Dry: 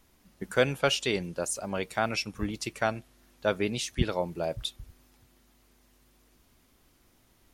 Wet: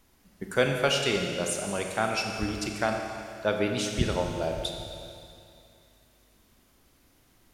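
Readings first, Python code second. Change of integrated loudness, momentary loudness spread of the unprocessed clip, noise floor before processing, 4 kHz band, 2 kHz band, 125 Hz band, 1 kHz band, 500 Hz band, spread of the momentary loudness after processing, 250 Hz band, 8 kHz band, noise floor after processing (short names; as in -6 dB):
+1.5 dB, 8 LU, -65 dBFS, +2.0 dB, +2.0 dB, +2.0 dB, +2.0 dB, +2.0 dB, 14 LU, +2.0 dB, +2.0 dB, -63 dBFS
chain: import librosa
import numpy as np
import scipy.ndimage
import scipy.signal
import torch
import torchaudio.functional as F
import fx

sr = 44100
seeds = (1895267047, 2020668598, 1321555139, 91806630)

y = fx.rev_schroeder(x, sr, rt60_s=2.5, comb_ms=29, drr_db=2.5)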